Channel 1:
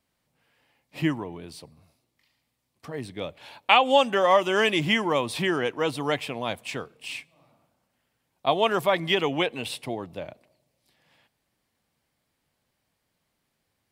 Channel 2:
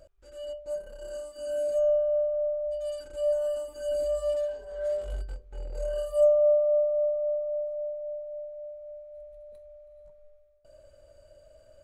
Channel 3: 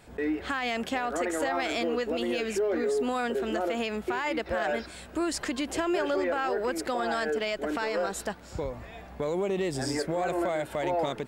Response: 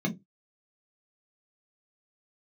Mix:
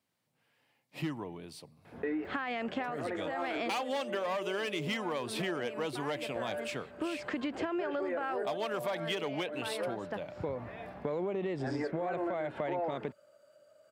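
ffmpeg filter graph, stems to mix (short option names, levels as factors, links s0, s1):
-filter_complex "[0:a]asoftclip=type=hard:threshold=0.133,volume=0.531,asplit=2[s0][s1];[1:a]highpass=f=160:w=0.5412,highpass=f=160:w=1.3066,equalizer=f=1300:w=4.4:g=14.5,acompressor=mode=upward:threshold=0.0141:ratio=2.5,adelay=2250,volume=0.178[s2];[2:a]lowpass=2500,adelay=1850,volume=1.06[s3];[s1]apad=whole_len=578628[s4];[s3][s4]sidechaincompress=threshold=0.00631:ratio=4:attack=36:release=390[s5];[s0][s2][s5]amix=inputs=3:normalize=0,highpass=f=93:w=0.5412,highpass=f=93:w=1.3066,acompressor=threshold=0.0282:ratio=6"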